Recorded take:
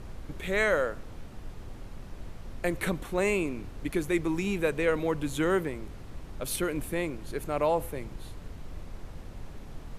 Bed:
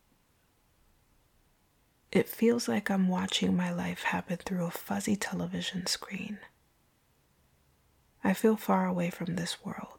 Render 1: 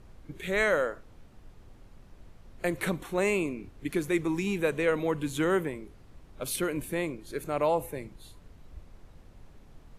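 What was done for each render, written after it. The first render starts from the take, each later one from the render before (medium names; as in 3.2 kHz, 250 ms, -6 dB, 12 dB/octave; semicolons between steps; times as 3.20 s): noise print and reduce 10 dB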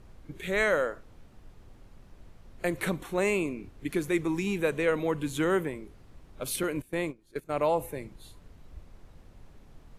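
6.63–7.66 s: gate -35 dBFS, range -17 dB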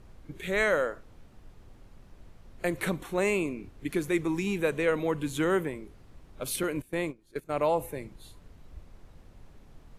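no audible change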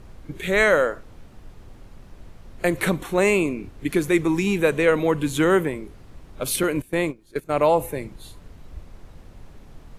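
trim +8 dB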